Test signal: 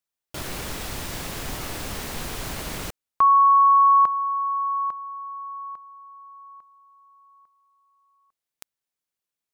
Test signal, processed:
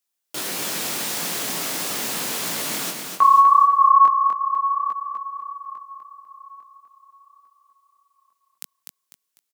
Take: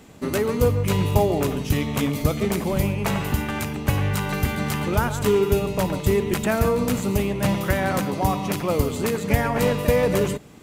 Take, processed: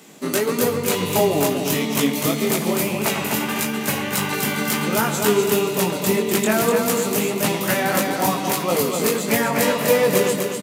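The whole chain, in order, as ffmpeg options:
-filter_complex "[0:a]highpass=f=170:w=0.5412,highpass=f=170:w=1.3066,highshelf=f=3300:g=8.5,flanger=delay=17.5:depth=6.2:speed=1.6,asplit=2[s0][s1];[s1]aecho=0:1:249|498|747|996:0.562|0.197|0.0689|0.0241[s2];[s0][s2]amix=inputs=2:normalize=0,volume=1.68"

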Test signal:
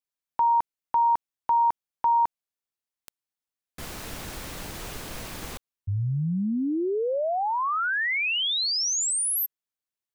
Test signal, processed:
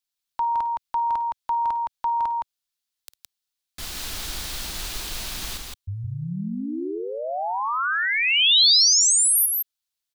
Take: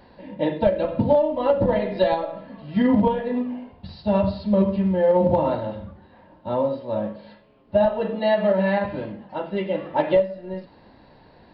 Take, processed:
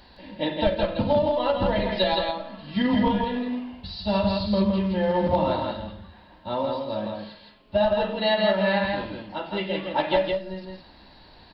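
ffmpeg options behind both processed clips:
-af "equalizer=f=125:t=o:w=1:g=-11,equalizer=f=250:t=o:w=1:g=-6,equalizer=f=500:t=o:w=1:g=-10,equalizer=f=1000:t=o:w=1:g=-4,equalizer=f=2000:t=o:w=1:g=-4,equalizer=f=4000:t=o:w=1:g=5,aecho=1:1:53|165:0.141|0.668,volume=1.88"

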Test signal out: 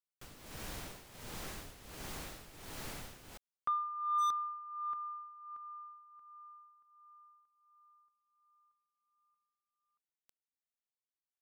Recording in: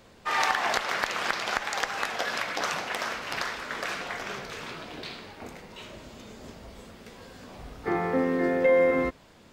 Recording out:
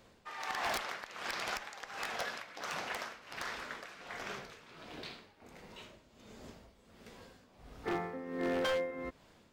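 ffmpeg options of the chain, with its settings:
-af "tremolo=f=1.4:d=0.77,aeval=exprs='0.335*(cos(1*acos(clip(val(0)/0.335,-1,1)))-cos(1*PI/2))+0.0596*(cos(3*acos(clip(val(0)/0.335,-1,1)))-cos(3*PI/2))':c=same,aeval=exprs='0.0447*(abs(mod(val(0)/0.0447+3,4)-2)-1)':c=same"

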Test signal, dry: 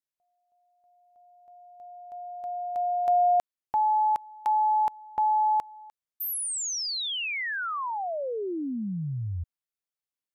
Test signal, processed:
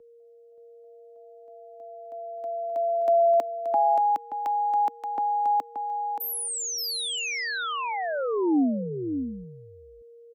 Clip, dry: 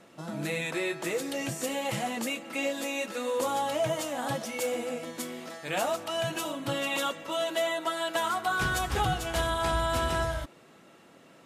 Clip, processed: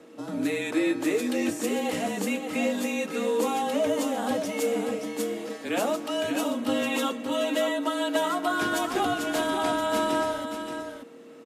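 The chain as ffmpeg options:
-filter_complex "[0:a]highpass=f=310:t=q:w=3.5,aeval=exprs='val(0)+0.00316*sin(2*PI*500*n/s)':c=same,afreqshift=-32,asplit=2[s0][s1];[s1]aecho=0:1:577:0.422[s2];[s0][s2]amix=inputs=2:normalize=0"

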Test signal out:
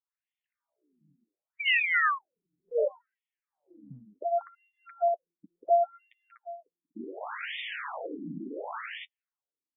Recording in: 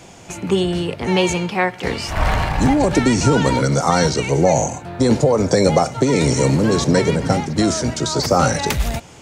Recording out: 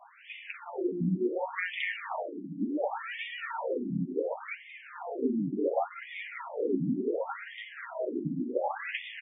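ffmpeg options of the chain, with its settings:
-filter_complex "[0:a]flanger=delay=5.8:depth=5.5:regen=-21:speed=0.62:shape=triangular,aeval=exprs='0.631*(cos(1*acos(clip(val(0)/0.631,-1,1)))-cos(1*PI/2))+0.0178*(cos(6*acos(clip(val(0)/0.631,-1,1)))-cos(6*PI/2))':c=same,acompressor=threshold=0.0631:ratio=6,asplit=2[s0][s1];[s1]aecho=0:1:186.6|244.9:0.501|0.891[s2];[s0][s2]amix=inputs=2:normalize=0,afftfilt=real='re*between(b*sr/1024,230*pow(2600/230,0.5+0.5*sin(2*PI*0.69*pts/sr))/1.41,230*pow(2600/230,0.5+0.5*sin(2*PI*0.69*pts/sr))*1.41)':imag='im*between(b*sr/1024,230*pow(2600/230,0.5+0.5*sin(2*PI*0.69*pts/sr))/1.41,230*pow(2600/230,0.5+0.5*sin(2*PI*0.69*pts/sr))*1.41)':win_size=1024:overlap=0.75"

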